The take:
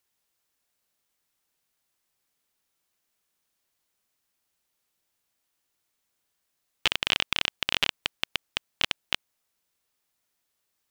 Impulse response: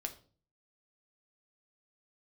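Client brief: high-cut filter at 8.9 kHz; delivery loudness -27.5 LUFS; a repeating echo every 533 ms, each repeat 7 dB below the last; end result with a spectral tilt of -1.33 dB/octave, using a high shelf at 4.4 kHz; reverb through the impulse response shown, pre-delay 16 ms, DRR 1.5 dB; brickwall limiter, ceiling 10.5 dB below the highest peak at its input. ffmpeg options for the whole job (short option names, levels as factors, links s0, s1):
-filter_complex "[0:a]lowpass=8900,highshelf=f=4400:g=-5,alimiter=limit=0.158:level=0:latency=1,aecho=1:1:533|1066|1599|2132|2665:0.447|0.201|0.0905|0.0407|0.0183,asplit=2[s0][s1];[1:a]atrim=start_sample=2205,adelay=16[s2];[s1][s2]afir=irnorm=-1:irlink=0,volume=0.944[s3];[s0][s3]amix=inputs=2:normalize=0,volume=3.16"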